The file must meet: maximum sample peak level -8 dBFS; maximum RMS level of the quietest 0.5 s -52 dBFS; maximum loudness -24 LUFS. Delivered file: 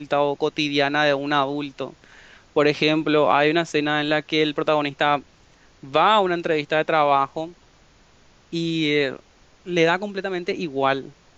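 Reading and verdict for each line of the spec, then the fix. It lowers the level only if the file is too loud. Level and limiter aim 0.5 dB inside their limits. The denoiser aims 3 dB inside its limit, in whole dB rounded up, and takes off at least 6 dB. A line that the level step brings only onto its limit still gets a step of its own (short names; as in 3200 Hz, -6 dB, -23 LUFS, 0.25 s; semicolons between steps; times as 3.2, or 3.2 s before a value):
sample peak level -5.0 dBFS: fail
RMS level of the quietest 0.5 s -54 dBFS: OK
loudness -21.5 LUFS: fail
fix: gain -3 dB; limiter -8.5 dBFS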